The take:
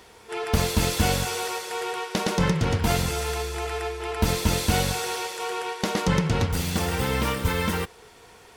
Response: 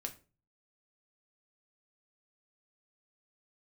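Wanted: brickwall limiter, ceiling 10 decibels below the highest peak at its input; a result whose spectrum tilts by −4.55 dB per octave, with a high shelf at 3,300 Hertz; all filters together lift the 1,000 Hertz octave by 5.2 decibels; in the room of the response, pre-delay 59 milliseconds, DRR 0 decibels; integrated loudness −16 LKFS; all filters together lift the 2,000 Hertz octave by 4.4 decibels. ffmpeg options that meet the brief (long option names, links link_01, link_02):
-filter_complex "[0:a]equalizer=frequency=1000:width_type=o:gain=6,equalizer=frequency=2000:width_type=o:gain=5,highshelf=frequency=3300:gain=-4,alimiter=limit=-16.5dB:level=0:latency=1,asplit=2[link_01][link_02];[1:a]atrim=start_sample=2205,adelay=59[link_03];[link_02][link_03]afir=irnorm=-1:irlink=0,volume=1.5dB[link_04];[link_01][link_04]amix=inputs=2:normalize=0,volume=7dB"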